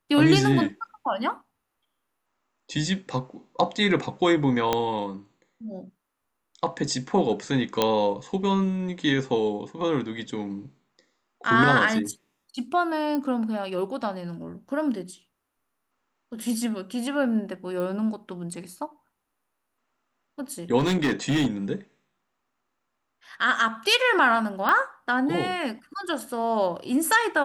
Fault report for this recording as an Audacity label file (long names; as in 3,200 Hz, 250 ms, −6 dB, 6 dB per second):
4.730000	4.730000	click −8 dBFS
7.820000	7.820000	click −6 dBFS
13.150000	13.150000	click −17 dBFS
17.800000	17.800000	click −21 dBFS
20.780000	21.470000	clipping −18.5 dBFS
24.690000	24.690000	click −11 dBFS